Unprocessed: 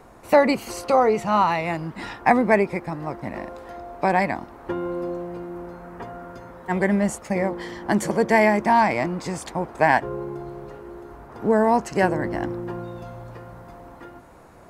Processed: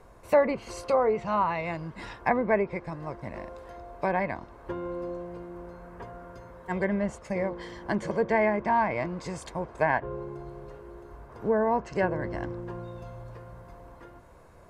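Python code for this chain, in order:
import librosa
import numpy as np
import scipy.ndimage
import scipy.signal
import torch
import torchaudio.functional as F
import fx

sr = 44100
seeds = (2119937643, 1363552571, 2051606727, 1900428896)

y = fx.env_lowpass_down(x, sr, base_hz=2200.0, full_db=-14.5)
y = fx.low_shelf(y, sr, hz=93.0, db=6.5)
y = y + 0.35 * np.pad(y, (int(1.9 * sr / 1000.0), 0))[:len(y)]
y = y * librosa.db_to_amplitude(-7.0)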